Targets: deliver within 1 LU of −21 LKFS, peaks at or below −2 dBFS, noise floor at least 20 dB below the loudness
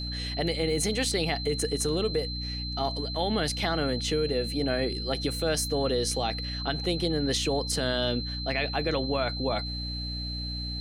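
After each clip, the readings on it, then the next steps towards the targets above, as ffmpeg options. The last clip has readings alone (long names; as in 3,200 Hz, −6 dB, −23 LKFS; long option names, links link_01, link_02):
mains hum 60 Hz; hum harmonics up to 300 Hz; level of the hum −33 dBFS; interfering tone 4,100 Hz; level of the tone −35 dBFS; integrated loudness −28.5 LKFS; sample peak −13.5 dBFS; target loudness −21.0 LKFS
→ -af "bandreject=frequency=60:width_type=h:width=6,bandreject=frequency=120:width_type=h:width=6,bandreject=frequency=180:width_type=h:width=6,bandreject=frequency=240:width_type=h:width=6,bandreject=frequency=300:width_type=h:width=6"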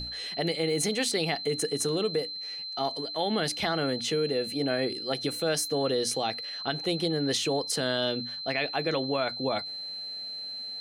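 mains hum none found; interfering tone 4,100 Hz; level of the tone −35 dBFS
→ -af "bandreject=frequency=4100:width=30"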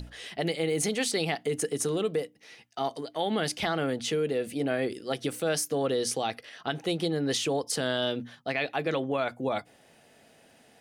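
interfering tone none found; integrated loudness −30.0 LKFS; sample peak −14.5 dBFS; target loudness −21.0 LKFS
→ -af "volume=9dB"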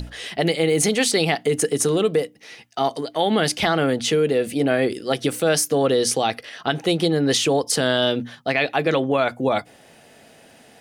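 integrated loudness −21.0 LKFS; sample peak −5.5 dBFS; background noise floor −51 dBFS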